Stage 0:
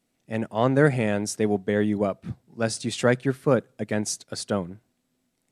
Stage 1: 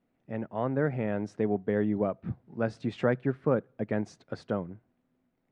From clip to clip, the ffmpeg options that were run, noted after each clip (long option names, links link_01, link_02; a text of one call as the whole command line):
ffmpeg -i in.wav -af "acompressor=threshold=-42dB:ratio=1.5,lowpass=1700,dynaudnorm=framelen=200:gausssize=11:maxgain=4dB" out.wav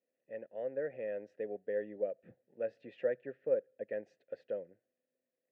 ffmpeg -i in.wav -filter_complex "[0:a]asplit=3[link_01][link_02][link_03];[link_01]bandpass=frequency=530:width_type=q:width=8,volume=0dB[link_04];[link_02]bandpass=frequency=1840:width_type=q:width=8,volume=-6dB[link_05];[link_03]bandpass=frequency=2480:width_type=q:width=8,volume=-9dB[link_06];[link_04][link_05][link_06]amix=inputs=3:normalize=0" out.wav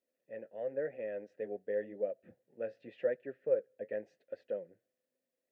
ffmpeg -i in.wav -af "flanger=delay=3:depth=7.2:regen=-53:speed=0.91:shape=sinusoidal,volume=4dB" out.wav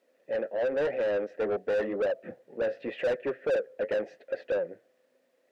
ffmpeg -i in.wav -filter_complex "[0:a]asplit=2[link_01][link_02];[link_02]highpass=frequency=720:poles=1,volume=31dB,asoftclip=type=tanh:threshold=-19dB[link_03];[link_01][link_03]amix=inputs=2:normalize=0,lowpass=frequency=1200:poles=1,volume=-6dB" out.wav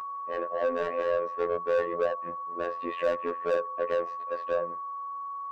ffmpeg -i in.wav -af "bandreject=frequency=60:width_type=h:width=6,bandreject=frequency=120:width_type=h:width=6,aeval=exprs='val(0)+0.0251*sin(2*PI*1100*n/s)':channel_layout=same,afftfilt=real='hypot(re,im)*cos(PI*b)':imag='0':win_size=2048:overlap=0.75,volume=2.5dB" out.wav